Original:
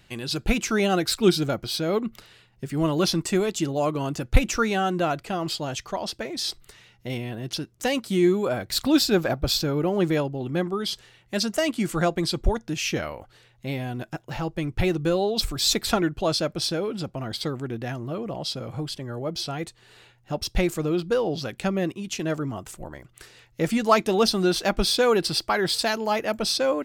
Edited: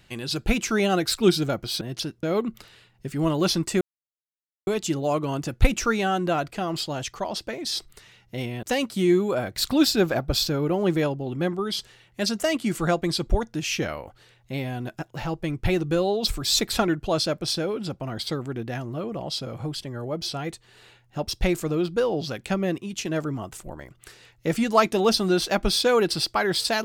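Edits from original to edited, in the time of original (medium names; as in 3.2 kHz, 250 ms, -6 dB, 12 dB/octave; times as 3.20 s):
3.39 s: insert silence 0.86 s
7.35–7.77 s: move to 1.81 s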